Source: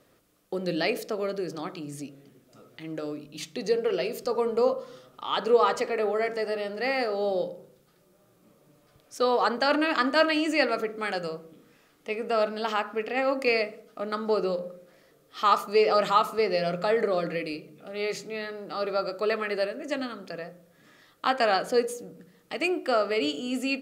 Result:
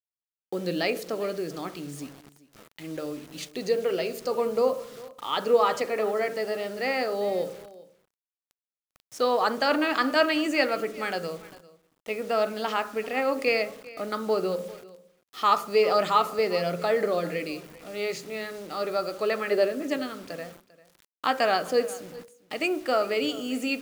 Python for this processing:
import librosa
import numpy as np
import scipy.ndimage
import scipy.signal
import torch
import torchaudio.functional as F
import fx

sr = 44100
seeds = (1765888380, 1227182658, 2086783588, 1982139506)

y = fx.peak_eq(x, sr, hz=fx.line((19.5, 540.0), (19.96, 180.0)), db=8.5, octaves=1.3, at=(19.5, 19.96), fade=0.02)
y = fx.quant_dither(y, sr, seeds[0], bits=8, dither='none')
y = y + 10.0 ** (-20.0 / 20.0) * np.pad(y, (int(397 * sr / 1000.0), 0))[:len(y)]